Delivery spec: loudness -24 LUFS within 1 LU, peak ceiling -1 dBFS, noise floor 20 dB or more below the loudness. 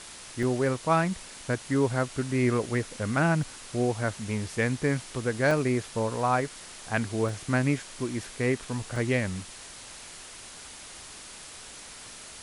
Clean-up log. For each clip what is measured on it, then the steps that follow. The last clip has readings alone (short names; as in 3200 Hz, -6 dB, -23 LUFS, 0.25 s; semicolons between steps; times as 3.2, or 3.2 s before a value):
dropouts 5; longest dropout 1.3 ms; noise floor -45 dBFS; noise floor target -49 dBFS; loudness -28.5 LUFS; peak -12.0 dBFS; loudness target -24.0 LUFS
-> interpolate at 0.43/3.43/5.51/7.29/8.96, 1.3 ms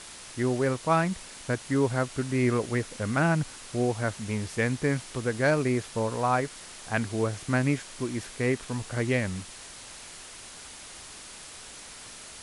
dropouts 0; noise floor -45 dBFS; noise floor target -49 dBFS
-> noise print and reduce 6 dB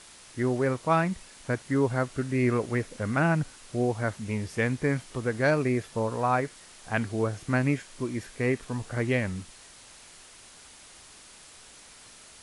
noise floor -51 dBFS; loudness -28.5 LUFS; peak -12.5 dBFS; loudness target -24.0 LUFS
-> gain +4.5 dB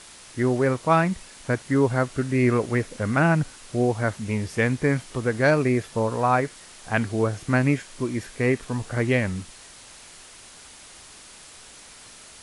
loudness -24.0 LUFS; peak -8.0 dBFS; noise floor -47 dBFS